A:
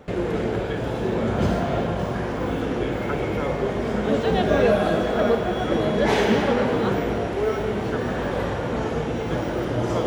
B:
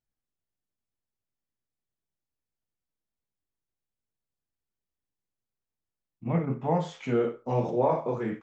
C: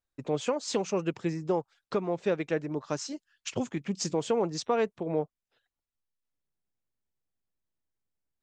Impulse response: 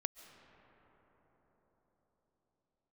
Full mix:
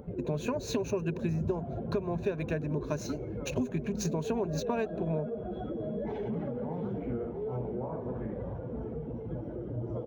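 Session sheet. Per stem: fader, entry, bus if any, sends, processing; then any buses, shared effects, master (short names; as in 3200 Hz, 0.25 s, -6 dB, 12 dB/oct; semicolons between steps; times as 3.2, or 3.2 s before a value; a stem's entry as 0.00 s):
-13.0 dB, 0.00 s, bus A, no send, echo send -15.5 dB, spectral contrast raised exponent 1.8; notch 1800 Hz, Q 10; upward expander 1.5:1, over -34 dBFS
-12.0 dB, 0.00 s, bus A, no send, echo send -15 dB, LPF 1700 Hz 12 dB/oct
-3.5 dB, 0.00 s, no bus, send -21.5 dB, no echo send, median filter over 5 samples; ripple EQ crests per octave 1.5, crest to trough 12 dB
bus A: 0.0 dB, upward compressor, threshold -39 dBFS; limiter -31.5 dBFS, peak gain reduction 9.5 dB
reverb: on, pre-delay 0.1 s
echo: feedback echo 0.634 s, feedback 44%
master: low shelf 330 Hz +8 dB; compressor 6:1, threshold -27 dBFS, peak gain reduction 8.5 dB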